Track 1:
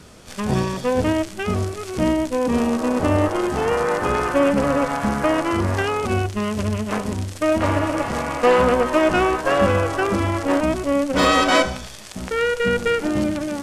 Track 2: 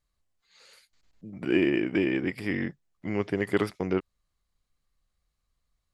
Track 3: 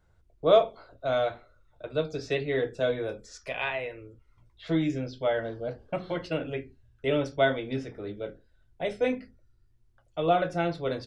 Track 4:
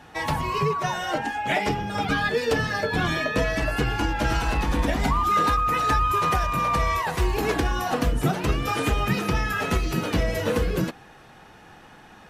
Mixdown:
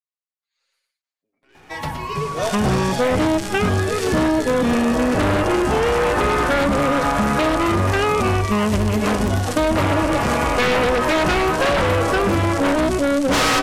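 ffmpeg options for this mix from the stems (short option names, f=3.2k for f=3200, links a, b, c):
-filter_complex "[0:a]aeval=exprs='0.596*sin(PI/2*3.55*val(0)/0.596)':c=same,adelay=2150,volume=-6dB[a];[1:a]highpass=660,aecho=1:1:7.4:0.92,aeval=exprs='(tanh(50.1*val(0)+0.6)-tanh(0.6))/50.1':c=same,volume=-17.5dB,asplit=2[b][c];[c]volume=-4.5dB[d];[2:a]adelay=1900,volume=-5dB[e];[3:a]adelay=1550,volume=-1.5dB,asplit=2[f][g];[g]volume=-9dB[h];[d][h]amix=inputs=2:normalize=0,aecho=0:1:117:1[i];[a][b][e][f][i]amix=inputs=5:normalize=0,acompressor=threshold=-15dB:ratio=6"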